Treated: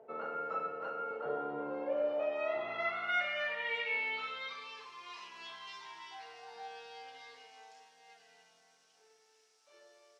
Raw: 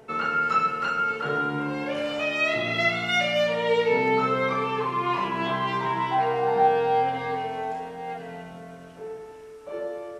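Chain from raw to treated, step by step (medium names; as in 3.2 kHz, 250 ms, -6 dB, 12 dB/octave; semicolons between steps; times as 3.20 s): feedback echo behind a low-pass 291 ms, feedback 59%, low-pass 1.1 kHz, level -12 dB; band-pass sweep 590 Hz -> 5.4 kHz, 2.11–4.89 s; trim -2.5 dB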